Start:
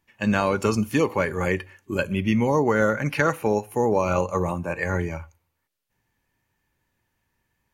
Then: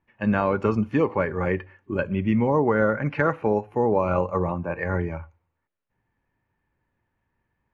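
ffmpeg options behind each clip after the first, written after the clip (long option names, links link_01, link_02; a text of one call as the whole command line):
ffmpeg -i in.wav -af "lowpass=1800" out.wav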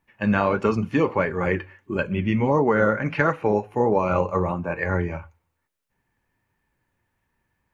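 ffmpeg -i in.wav -af "highshelf=frequency=2800:gain=9.5,flanger=delay=4.4:depth=6.9:regen=-64:speed=1.5:shape=sinusoidal,volume=5dB" out.wav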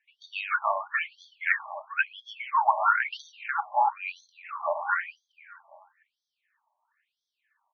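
ffmpeg -i in.wav -filter_complex "[0:a]asplit=2[link_01][link_02];[link_02]adelay=297,lowpass=frequency=1700:poles=1,volume=-10dB,asplit=2[link_03][link_04];[link_04]adelay=297,lowpass=frequency=1700:poles=1,volume=0.42,asplit=2[link_05][link_06];[link_06]adelay=297,lowpass=frequency=1700:poles=1,volume=0.42,asplit=2[link_07][link_08];[link_08]adelay=297,lowpass=frequency=1700:poles=1,volume=0.42[link_09];[link_03][link_05][link_07][link_09]amix=inputs=4:normalize=0[link_10];[link_01][link_10]amix=inputs=2:normalize=0,afftfilt=real='re*between(b*sr/1024,800*pow(4600/800,0.5+0.5*sin(2*PI*1*pts/sr))/1.41,800*pow(4600/800,0.5+0.5*sin(2*PI*1*pts/sr))*1.41)':imag='im*between(b*sr/1024,800*pow(4600/800,0.5+0.5*sin(2*PI*1*pts/sr))/1.41,800*pow(4600/800,0.5+0.5*sin(2*PI*1*pts/sr))*1.41)':win_size=1024:overlap=0.75,volume=5.5dB" out.wav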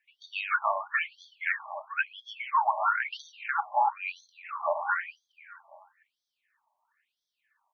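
ffmpeg -i in.wav -af "alimiter=limit=-15.5dB:level=0:latency=1:release=241" out.wav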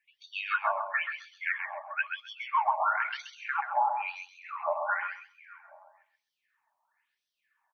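ffmpeg -i in.wav -af "aecho=1:1:131|262|393:0.473|0.071|0.0106,volume=-2dB" out.wav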